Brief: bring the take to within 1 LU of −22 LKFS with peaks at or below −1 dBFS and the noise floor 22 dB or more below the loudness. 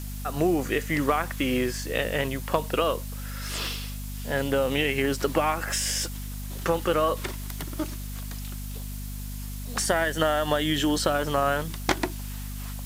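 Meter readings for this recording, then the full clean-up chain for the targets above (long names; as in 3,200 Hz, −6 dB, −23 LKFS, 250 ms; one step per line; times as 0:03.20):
mains hum 50 Hz; hum harmonics up to 250 Hz; level of the hum −33 dBFS; background noise floor −35 dBFS; target noise floor −50 dBFS; integrated loudness −27.5 LKFS; sample peak −9.0 dBFS; target loudness −22.0 LKFS
→ mains-hum notches 50/100/150/200/250 Hz
noise reduction from a noise print 15 dB
level +5.5 dB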